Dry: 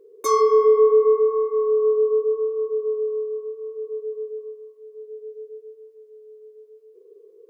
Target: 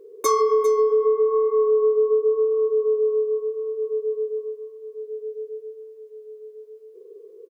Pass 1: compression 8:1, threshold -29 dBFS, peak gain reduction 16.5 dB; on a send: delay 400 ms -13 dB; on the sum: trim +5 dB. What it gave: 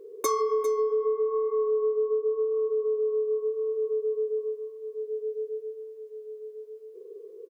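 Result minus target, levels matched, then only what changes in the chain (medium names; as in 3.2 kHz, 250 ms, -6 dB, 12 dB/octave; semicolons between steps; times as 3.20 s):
compression: peak gain reduction +7 dB
change: compression 8:1, threshold -21 dBFS, peak gain reduction 9.5 dB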